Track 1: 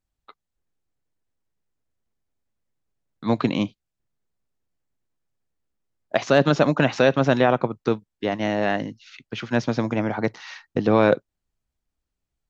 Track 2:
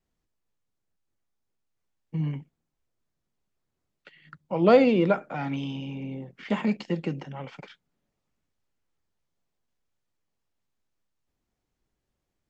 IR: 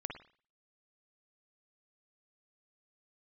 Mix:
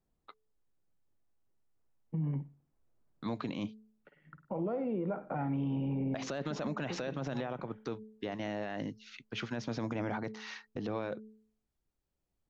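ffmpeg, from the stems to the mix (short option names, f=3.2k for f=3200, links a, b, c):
-filter_complex "[0:a]bandreject=f=216.7:t=h:w=4,bandreject=f=433.4:t=h:w=4,alimiter=limit=-14.5dB:level=0:latency=1:release=144,volume=-6dB,asplit=2[a][b];[1:a]acompressor=threshold=-31dB:ratio=12,lowpass=1.1k,dynaudnorm=f=290:g=21:m=8dB,volume=-1.5dB,asplit=2[c][d];[d]volume=-13dB[e];[b]apad=whole_len=550892[f];[c][f]sidechaincompress=threshold=-50dB:ratio=4:attack=11:release=1160[g];[2:a]atrim=start_sample=2205[h];[e][h]afir=irnorm=-1:irlink=0[i];[a][g][i]amix=inputs=3:normalize=0,alimiter=level_in=3dB:limit=-24dB:level=0:latency=1:release=43,volume=-3dB"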